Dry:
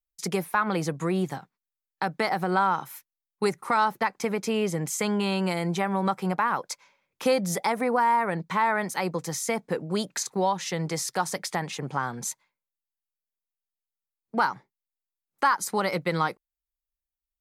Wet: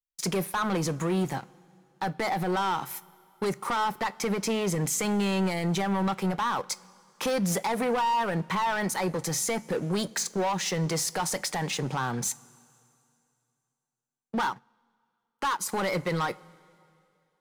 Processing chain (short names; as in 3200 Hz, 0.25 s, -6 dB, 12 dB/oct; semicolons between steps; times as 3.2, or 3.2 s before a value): sample leveller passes 3; limiter -16.5 dBFS, peak gain reduction 4.5 dB; two-slope reverb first 0.22 s, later 2.6 s, from -18 dB, DRR 14 dB; 14.5–15.69 upward expander 1.5:1, over -43 dBFS; gain -6 dB